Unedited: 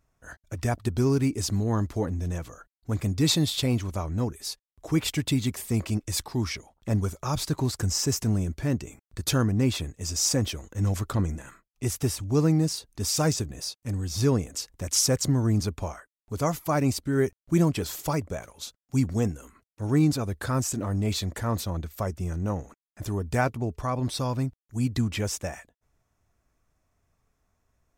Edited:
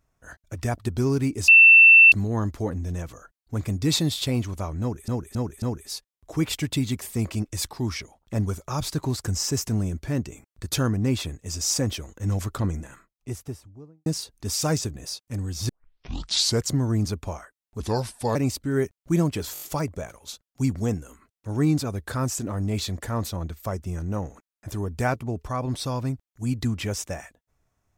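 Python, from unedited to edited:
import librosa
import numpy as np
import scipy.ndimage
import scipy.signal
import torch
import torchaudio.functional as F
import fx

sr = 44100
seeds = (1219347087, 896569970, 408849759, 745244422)

y = fx.studio_fade_out(x, sr, start_s=11.3, length_s=1.31)
y = fx.edit(y, sr, fx.insert_tone(at_s=1.48, length_s=0.64, hz=2680.0, db=-8.0),
    fx.repeat(start_s=4.17, length_s=0.27, count=4),
    fx.tape_start(start_s=14.24, length_s=0.98),
    fx.speed_span(start_s=16.35, length_s=0.42, speed=0.76),
    fx.stutter(start_s=17.95, slice_s=0.02, count=5), tone=tone)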